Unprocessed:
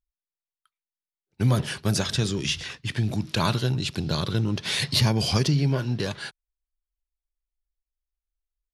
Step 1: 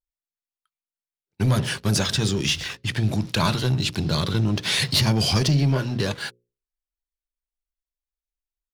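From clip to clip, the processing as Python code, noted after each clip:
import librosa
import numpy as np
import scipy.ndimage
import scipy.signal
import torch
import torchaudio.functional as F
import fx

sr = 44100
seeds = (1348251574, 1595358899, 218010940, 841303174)

y = fx.leveller(x, sr, passes=2)
y = fx.hum_notches(y, sr, base_hz=60, count=9)
y = y * librosa.db_to_amplitude(-3.0)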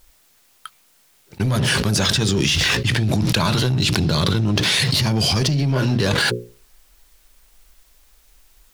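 y = fx.env_flatten(x, sr, amount_pct=100)
y = y * librosa.db_to_amplitude(-2.0)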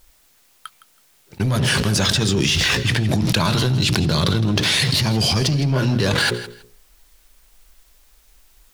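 y = fx.echo_feedback(x, sr, ms=162, feedback_pct=20, wet_db=-15.0)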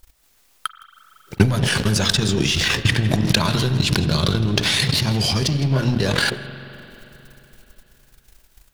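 y = fx.transient(x, sr, attack_db=12, sustain_db=-12)
y = fx.rev_spring(y, sr, rt60_s=3.5, pass_ms=(37, 44), chirp_ms=20, drr_db=12.0)
y = y * librosa.db_to_amplitude(-2.0)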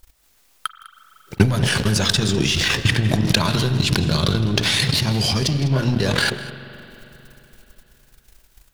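y = x + 10.0 ** (-18.0 / 20.0) * np.pad(x, (int(202 * sr / 1000.0), 0))[:len(x)]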